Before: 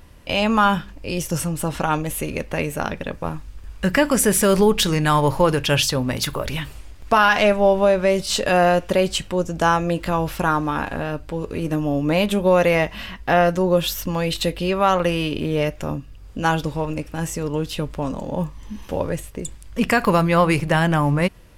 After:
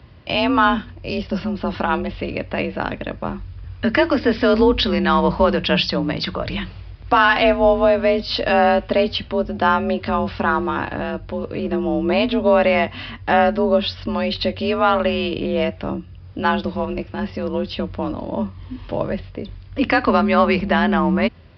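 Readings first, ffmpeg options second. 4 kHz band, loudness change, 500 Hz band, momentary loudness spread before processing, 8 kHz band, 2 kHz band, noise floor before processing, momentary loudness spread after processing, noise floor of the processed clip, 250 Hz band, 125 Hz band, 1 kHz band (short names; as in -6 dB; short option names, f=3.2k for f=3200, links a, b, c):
+1.0 dB, +1.0 dB, +1.0 dB, 12 LU, under -25 dB, +1.5 dB, -41 dBFS, 12 LU, -39 dBFS, +2.0 dB, -4.5 dB, +1.5 dB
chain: -af "afreqshift=43,aresample=11025,aresample=44100,volume=1dB"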